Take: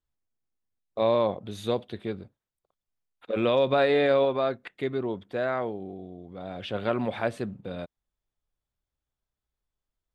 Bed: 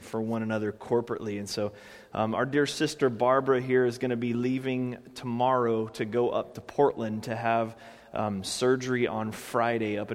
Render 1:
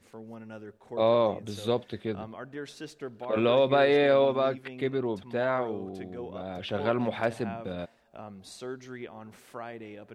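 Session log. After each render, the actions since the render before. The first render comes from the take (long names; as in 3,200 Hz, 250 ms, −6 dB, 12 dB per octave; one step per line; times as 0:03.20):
mix in bed −14 dB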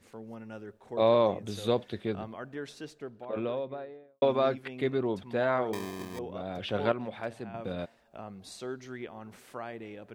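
0:02.44–0:04.22: fade out and dull
0:05.73–0:06.19: sample-rate reduction 1,400 Hz
0:06.92–0:07.54: clip gain −8.5 dB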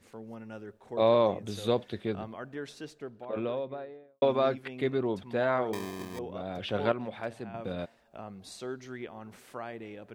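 no processing that can be heard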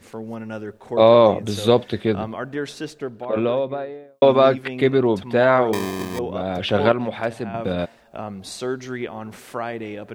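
level +12 dB
brickwall limiter −2 dBFS, peak gain reduction 3 dB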